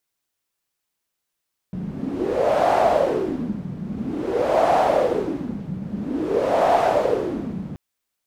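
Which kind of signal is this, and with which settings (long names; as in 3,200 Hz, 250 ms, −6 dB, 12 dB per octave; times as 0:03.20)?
wind from filtered noise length 6.03 s, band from 180 Hz, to 710 Hz, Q 5.3, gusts 3, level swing 13 dB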